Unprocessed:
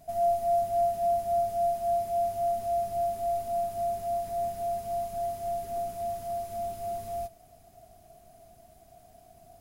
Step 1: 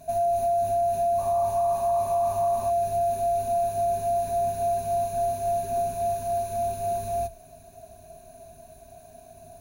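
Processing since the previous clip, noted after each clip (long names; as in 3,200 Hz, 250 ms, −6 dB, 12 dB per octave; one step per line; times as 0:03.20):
EQ curve with evenly spaced ripples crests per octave 1.5, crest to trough 12 dB
brickwall limiter −23.5 dBFS, peak gain reduction 6.5 dB
sound drawn into the spectrogram noise, 0:01.18–0:02.71, 540–1,200 Hz −45 dBFS
level +4.5 dB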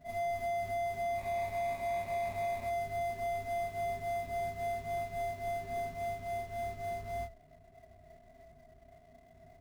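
running median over 41 samples
backwards echo 33 ms −6.5 dB
every ending faded ahead of time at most 210 dB per second
level −8 dB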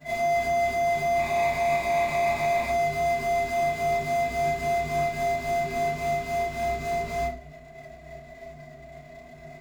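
convolution reverb RT60 0.40 s, pre-delay 3 ms, DRR −11.5 dB
level +2.5 dB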